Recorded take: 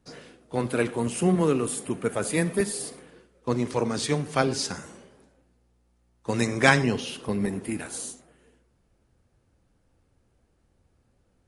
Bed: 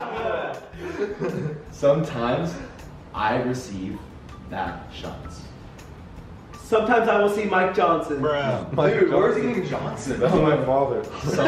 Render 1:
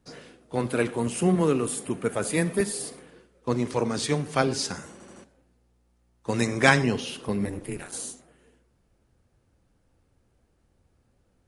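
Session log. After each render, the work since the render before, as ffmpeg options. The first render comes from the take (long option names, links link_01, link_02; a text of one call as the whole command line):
ffmpeg -i in.wav -filter_complex "[0:a]asplit=3[link_01][link_02][link_03];[link_01]afade=type=out:start_time=7.44:duration=0.02[link_04];[link_02]aeval=exprs='val(0)*sin(2*PI*100*n/s)':channel_layout=same,afade=type=in:start_time=7.44:duration=0.02,afade=type=out:start_time=7.91:duration=0.02[link_05];[link_03]afade=type=in:start_time=7.91:duration=0.02[link_06];[link_04][link_05][link_06]amix=inputs=3:normalize=0,asplit=5[link_07][link_08][link_09][link_10][link_11];[link_07]atrim=end=5.002[link_12];[link_08]atrim=start=4.918:end=5.002[link_13];[link_09]atrim=start=4.918:end=5.002[link_14];[link_10]atrim=start=4.918:end=5.002[link_15];[link_11]atrim=start=5.238[link_16];[link_12][link_13]acrossfade=duration=0.004:curve1=hsin:curve2=hsin[link_17];[link_17][link_14]acrossfade=duration=0.004:curve1=hsin:curve2=hsin[link_18];[link_18][link_15]acrossfade=duration=0.004:curve1=hsin:curve2=hsin[link_19];[link_19][link_16]acrossfade=duration=0.004:curve1=hsin:curve2=hsin" out.wav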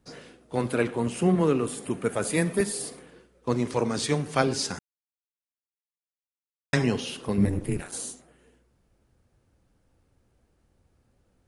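ffmpeg -i in.wav -filter_complex "[0:a]asettb=1/sr,asplit=3[link_01][link_02][link_03];[link_01]atrim=end=0.754[link_04];[link_02]atrim=start=0.75:end=1.83,asetpts=PTS-STARTPTS,afade=type=in:duration=0.004:curve=qsin,afade=type=out:start_time=1.076:duration=0.004:curve=qsin,highshelf=frequency=6900:gain=-9.5[link_05];[link_03]atrim=start=1.826[link_06];[link_04][link_05]acrossfade=duration=0.004:curve1=hsin:curve2=qsin[link_07];[link_07][link_06]acrossfade=duration=0.004:curve1=qsin:curve2=hsin,asettb=1/sr,asplit=3[link_08][link_09][link_10];[link_08]atrim=end=7.384[link_11];[link_09]atrim=start=7.38:end=7.81,asetpts=PTS-STARTPTS,afade=type=in:duration=0.004:curve=qsin,afade=type=out:start_time=0.426:duration=0.004:curve=qsin,lowshelf=frequency=260:gain=10.5[link_12];[link_10]atrim=start=7.806[link_13];[link_11][link_12]acrossfade=duration=0.004:curve1=hsin:curve2=qsin[link_14];[link_14][link_13]acrossfade=duration=0.004:curve1=qsin:curve2=hsin,asplit=3[link_15][link_16][link_17];[link_15]atrim=end=4.79,asetpts=PTS-STARTPTS,afade=type=out:start_time=4.786:duration=0.004:curve=hsin[link_18];[link_16]atrim=start=4.79:end=6.73,asetpts=PTS-STARTPTS,volume=0[link_19];[link_17]atrim=start=6.73,asetpts=PTS-STARTPTS,afade=type=in:duration=0.004:curve=hsin[link_20];[link_18][link_19][link_20]concat=n=3:v=0:a=1" out.wav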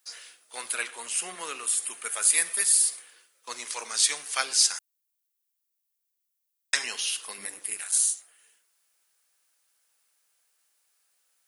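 ffmpeg -i in.wav -af "highpass=1400,aemphasis=mode=production:type=75kf" out.wav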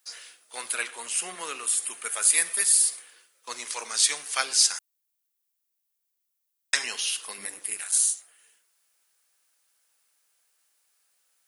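ffmpeg -i in.wav -af "volume=1dB" out.wav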